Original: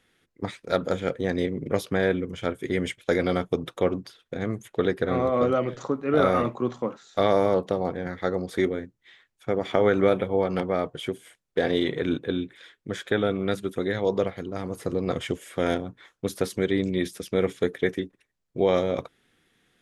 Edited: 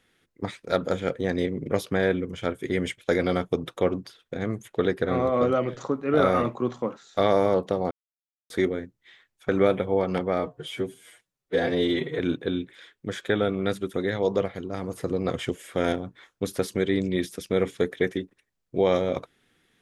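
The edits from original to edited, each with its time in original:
0:07.91–0:08.50: silence
0:09.49–0:09.91: remove
0:10.81–0:12.01: time-stretch 1.5×

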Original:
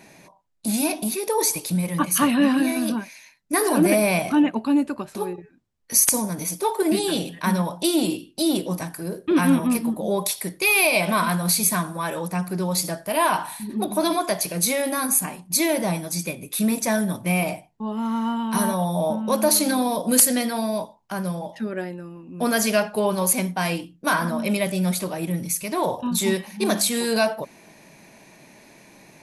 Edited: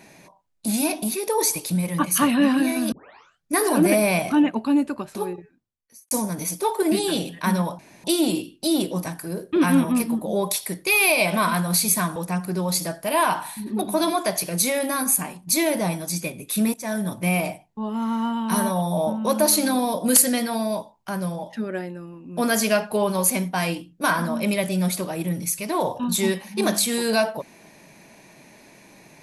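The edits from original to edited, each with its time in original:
0:02.92: tape start 0.60 s
0:05.36–0:06.11: fade out quadratic
0:07.79: splice in room tone 0.25 s
0:11.91–0:12.19: remove
0:16.77–0:17.28: fade in equal-power, from −20 dB

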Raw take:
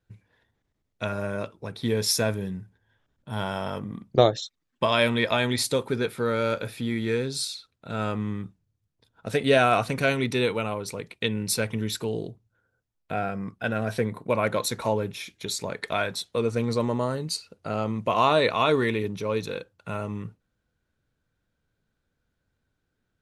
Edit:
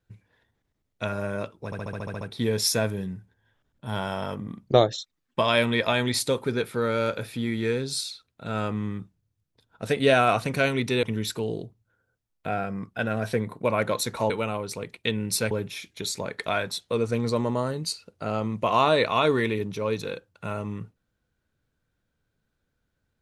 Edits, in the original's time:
0:01.65: stutter 0.07 s, 9 plays
0:10.47–0:11.68: move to 0:14.95

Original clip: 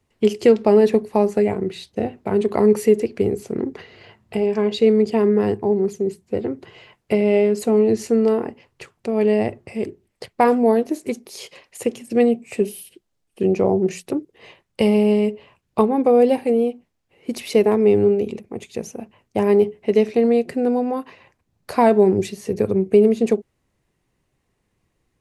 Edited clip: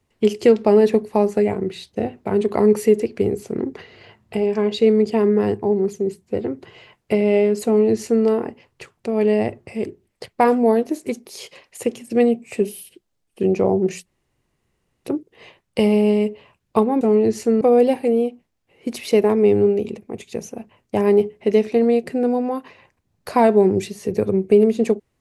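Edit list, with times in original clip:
0:07.65–0:08.25: duplicate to 0:16.03
0:14.06: splice in room tone 0.98 s

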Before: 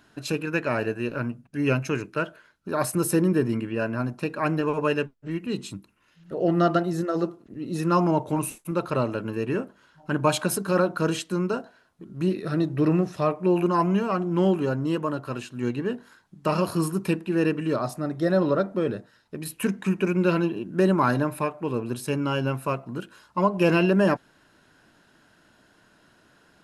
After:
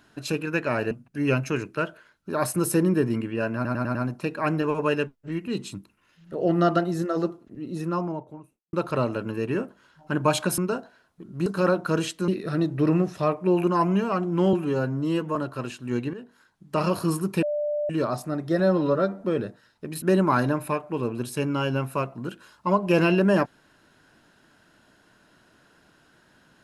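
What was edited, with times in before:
0:00.91–0:01.30: remove
0:03.94: stutter 0.10 s, 5 plays
0:07.25–0:08.72: fade out and dull
0:10.57–0:11.39: move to 0:12.27
0:14.52–0:15.07: time-stretch 1.5×
0:15.85–0:16.56: fade in, from −14 dB
0:17.14–0:17.61: beep over 592 Hz −23.5 dBFS
0:18.31–0:18.74: time-stretch 1.5×
0:19.52–0:20.73: remove

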